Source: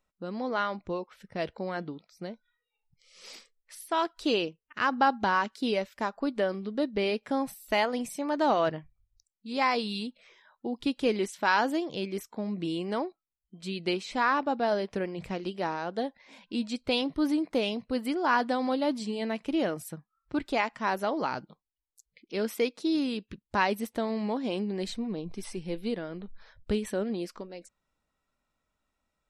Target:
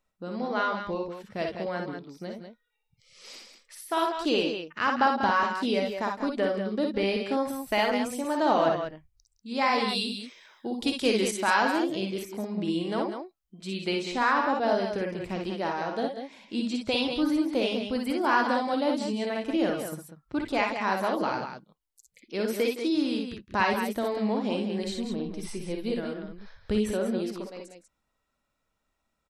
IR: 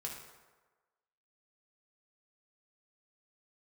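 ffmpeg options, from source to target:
-filter_complex "[0:a]asettb=1/sr,asplit=3[link_01][link_02][link_03];[link_01]atrim=end=9.884[link_04];[link_02]atrim=start=9.88:end=11.31,asetpts=PTS-STARTPTS,afade=type=in:duration=0.004:curve=qsin,afade=type=out:start_time=1.426:duration=0.004:curve=qsin,highshelf=frequency=3300:gain=11.5[link_05];[link_03]atrim=start=11.306[link_06];[link_04][link_05]acrossfade=duration=0.004:curve1=hsin:curve2=qsin[link_07];[link_07][link_06]acrossfade=duration=0.004:curve1=qsin:curve2=hsin,asplit=2[link_08][link_09];[link_09]aecho=0:1:52|61|164|193:0.447|0.531|0.178|0.422[link_10];[link_08][link_10]amix=inputs=2:normalize=0"

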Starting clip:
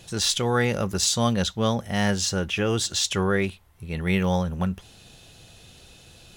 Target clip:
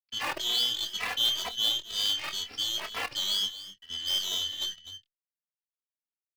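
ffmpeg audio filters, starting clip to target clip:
ffmpeg -i in.wav -filter_complex "[0:a]afftfilt=real='real(if(lt(b,272),68*(eq(floor(b/68),0)*2+eq(floor(b/68),1)*3+eq(floor(b/68),2)*0+eq(floor(b/68),3)*1)+mod(b,68),b),0)':imag='imag(if(lt(b,272),68*(eq(floor(b/68),0)*2+eq(floor(b/68),1)*3+eq(floor(b/68),2)*0+eq(floor(b/68),3)*1)+mod(b,68),b),0)':win_size=2048:overlap=0.75,aresample=11025,aeval=exprs='sgn(val(0))*max(abs(val(0))-0.0158,0)':channel_layout=same,aresample=44100,lowshelf=frequency=280:gain=-5,aeval=exprs='0.335*(cos(1*acos(clip(val(0)/0.335,-1,1)))-cos(1*PI/2))+0.0335*(cos(6*acos(clip(val(0)/0.335,-1,1)))-cos(6*PI/2))+0.0531*(cos(8*acos(clip(val(0)/0.335,-1,1)))-cos(8*PI/2))':channel_layout=same,highpass=frequency=51:width=0.5412,highpass=frequency=51:width=1.3066,asplit=2[link_01][link_02];[link_02]adelay=25,volume=-10dB[link_03];[link_01][link_03]amix=inputs=2:normalize=0,aecho=1:1:254:0.2,acrossover=split=320|1900[link_04][link_05][link_06];[link_04]acompressor=threshold=-50dB:ratio=6[link_07];[link_05]acrusher=bits=6:dc=4:mix=0:aa=0.000001[link_08];[link_07][link_08][link_06]amix=inputs=3:normalize=0,asplit=2[link_09][link_10];[link_10]adelay=2.7,afreqshift=2.1[link_11];[link_09][link_11]amix=inputs=2:normalize=1,volume=-2.5dB" out.wav

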